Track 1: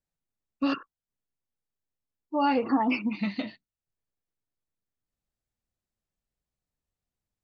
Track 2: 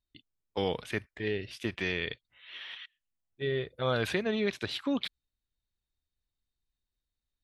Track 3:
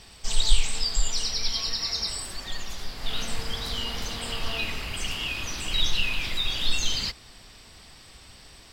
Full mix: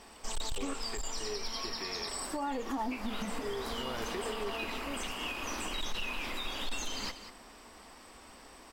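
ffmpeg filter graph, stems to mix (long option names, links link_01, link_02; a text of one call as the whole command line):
ffmpeg -i stem1.wav -i stem2.wav -i stem3.wav -filter_complex "[0:a]lowpass=1800,volume=-1dB[link_01];[1:a]equalizer=frequency=400:width=4.7:gain=11,volume=-9.5dB[link_02];[2:a]equalizer=frequency=125:width_type=o:width=1:gain=-10,equalizer=frequency=250:width_type=o:width=1:gain=10,equalizer=frequency=500:width_type=o:width=1:gain=4,equalizer=frequency=1000:width_type=o:width=1:gain=7,equalizer=frequency=4000:width_type=o:width=1:gain=-8,asoftclip=type=hard:threshold=-17dB,volume=-3dB,asplit=2[link_03][link_04];[link_04]volume=-12.5dB,aecho=0:1:191:1[link_05];[link_01][link_02][link_03][link_05]amix=inputs=4:normalize=0,lowshelf=frequency=300:gain=-6,alimiter=level_in=2.5dB:limit=-24dB:level=0:latency=1:release=207,volume=-2.5dB" out.wav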